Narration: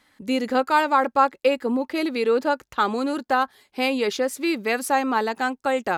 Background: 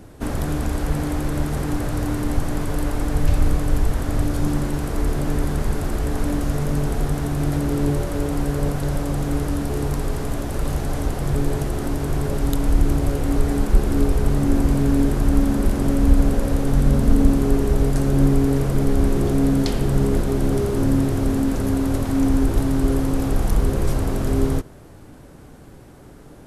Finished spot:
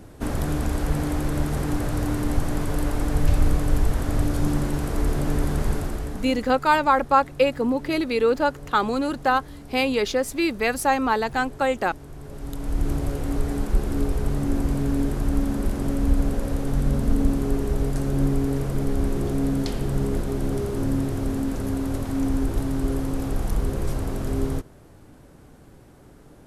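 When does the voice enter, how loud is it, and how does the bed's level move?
5.95 s, +0.5 dB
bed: 0:05.73 −1.5 dB
0:06.61 −18 dB
0:12.15 −18 dB
0:12.89 −5.5 dB

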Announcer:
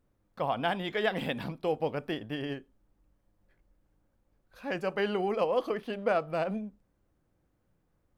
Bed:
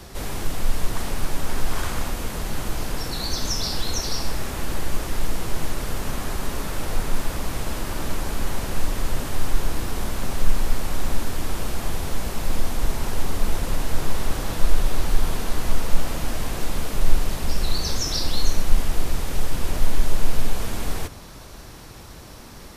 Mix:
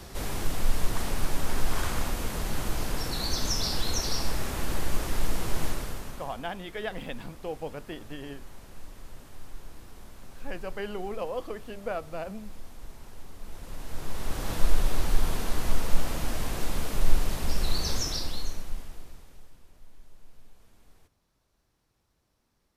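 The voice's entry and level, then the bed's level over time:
5.80 s, −5.5 dB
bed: 0:05.68 −3 dB
0:06.48 −21 dB
0:13.37 −21 dB
0:14.52 −4 dB
0:17.99 −4 dB
0:19.69 −32.5 dB

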